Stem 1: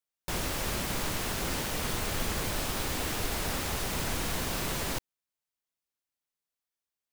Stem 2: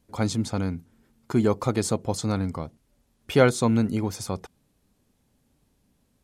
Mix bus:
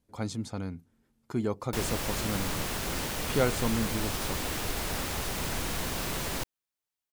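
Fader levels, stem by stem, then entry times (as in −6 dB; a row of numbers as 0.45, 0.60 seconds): −0.5, −8.5 decibels; 1.45, 0.00 seconds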